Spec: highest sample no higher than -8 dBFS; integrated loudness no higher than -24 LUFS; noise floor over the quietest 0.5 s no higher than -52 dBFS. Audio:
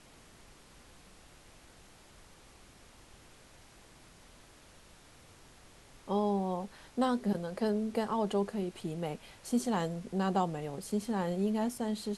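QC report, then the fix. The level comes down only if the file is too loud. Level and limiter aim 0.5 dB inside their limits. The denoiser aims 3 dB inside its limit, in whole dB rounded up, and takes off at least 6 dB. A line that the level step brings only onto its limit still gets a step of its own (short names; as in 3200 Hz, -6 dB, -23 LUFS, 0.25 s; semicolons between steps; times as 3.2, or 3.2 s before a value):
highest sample -17.0 dBFS: OK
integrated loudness -33.5 LUFS: OK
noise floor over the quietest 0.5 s -57 dBFS: OK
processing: none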